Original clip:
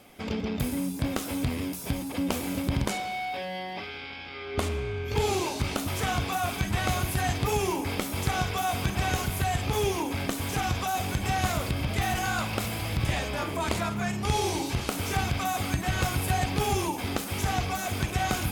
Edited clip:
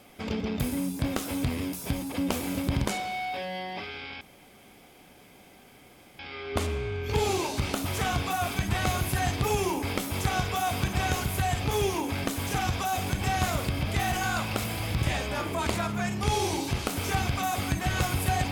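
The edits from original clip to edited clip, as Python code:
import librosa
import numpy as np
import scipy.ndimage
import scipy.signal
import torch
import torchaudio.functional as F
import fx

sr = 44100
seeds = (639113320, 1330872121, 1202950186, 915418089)

y = fx.edit(x, sr, fx.insert_room_tone(at_s=4.21, length_s=1.98), tone=tone)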